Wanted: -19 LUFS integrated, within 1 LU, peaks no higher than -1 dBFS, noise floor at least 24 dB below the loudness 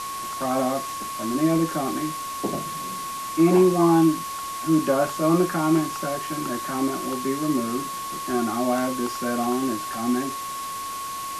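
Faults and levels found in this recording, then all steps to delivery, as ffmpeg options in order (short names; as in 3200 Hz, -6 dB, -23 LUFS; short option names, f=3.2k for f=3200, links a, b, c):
steady tone 1100 Hz; tone level -30 dBFS; noise floor -32 dBFS; noise floor target -48 dBFS; loudness -24.0 LUFS; peak -7.5 dBFS; loudness target -19.0 LUFS
-> -af "bandreject=f=1.1k:w=30"
-af "afftdn=nr=16:nf=-32"
-af "volume=5dB"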